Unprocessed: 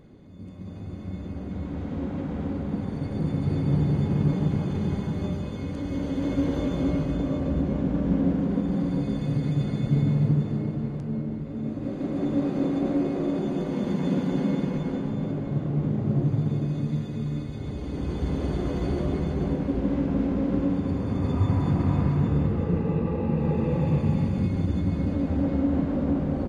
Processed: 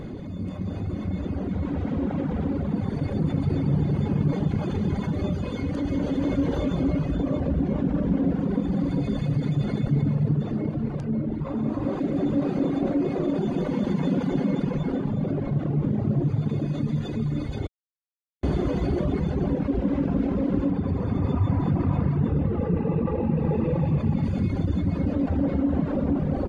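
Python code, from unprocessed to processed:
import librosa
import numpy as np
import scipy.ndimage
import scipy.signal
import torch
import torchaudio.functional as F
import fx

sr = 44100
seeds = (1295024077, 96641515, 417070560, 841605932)

y = fx.peak_eq(x, sr, hz=1000.0, db=9.5, octaves=0.7, at=(11.41, 12.0))
y = fx.high_shelf(y, sr, hz=5100.0, db=-10.0, at=(20.7, 24.23))
y = fx.edit(y, sr, fx.silence(start_s=17.67, length_s=0.76), tone=tone)
y = fx.dereverb_blind(y, sr, rt60_s=1.8)
y = fx.high_shelf(y, sr, hz=5200.0, db=-6.5)
y = fx.env_flatten(y, sr, amount_pct=50)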